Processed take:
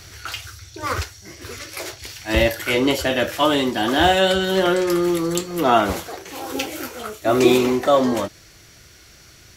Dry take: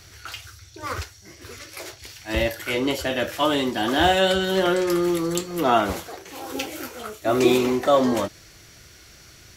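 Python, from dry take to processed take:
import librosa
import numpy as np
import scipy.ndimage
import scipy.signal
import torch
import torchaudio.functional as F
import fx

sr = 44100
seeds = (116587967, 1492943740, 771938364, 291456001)

y = fx.rider(x, sr, range_db=5, speed_s=2.0)
y = y * 10.0 ** (3.5 / 20.0)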